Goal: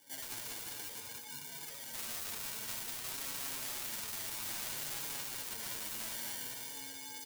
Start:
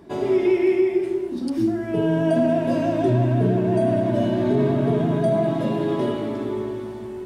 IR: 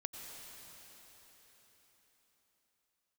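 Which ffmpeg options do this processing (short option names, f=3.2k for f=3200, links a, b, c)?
-af "acrusher=samples=33:mix=1:aa=0.000001,aderivative,aeval=exprs='0.133*(abs(mod(val(0)/0.133+3,4)-2)-1)':c=same,afreqshift=-100,equalizer=f=460:t=o:w=0.26:g=12.5,afftfilt=real='re*lt(hypot(re,im),0.02)':imag='im*lt(hypot(re,im),0.02)':win_size=1024:overlap=0.75,aecho=1:1:195.3|256.6:0.562|0.282,flanger=delay=7:depth=2.5:regen=20:speed=0.59:shape=triangular"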